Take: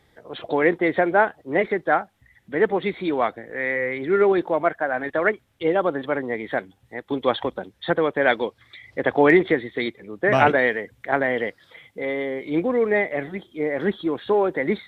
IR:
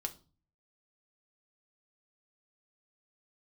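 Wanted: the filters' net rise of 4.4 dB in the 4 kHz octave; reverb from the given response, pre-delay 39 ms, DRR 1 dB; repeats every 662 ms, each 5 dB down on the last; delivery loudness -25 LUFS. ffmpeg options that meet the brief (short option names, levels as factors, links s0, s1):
-filter_complex "[0:a]equalizer=f=4000:t=o:g=5.5,aecho=1:1:662|1324|1986|2648|3310|3972|4634:0.562|0.315|0.176|0.0988|0.0553|0.031|0.0173,asplit=2[s0][s1];[1:a]atrim=start_sample=2205,adelay=39[s2];[s1][s2]afir=irnorm=-1:irlink=0,volume=0.944[s3];[s0][s3]amix=inputs=2:normalize=0,volume=0.447"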